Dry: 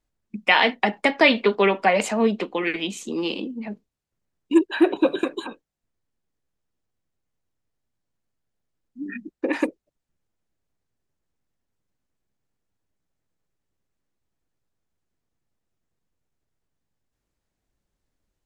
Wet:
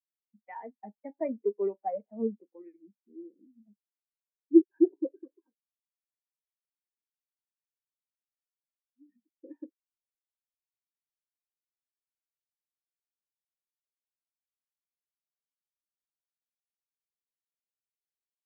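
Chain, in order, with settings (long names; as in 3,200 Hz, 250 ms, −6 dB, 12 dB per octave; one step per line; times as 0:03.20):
running median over 15 samples
high-shelf EQ 5,700 Hz −10 dB
every bin expanded away from the loudest bin 2.5 to 1
level −1.5 dB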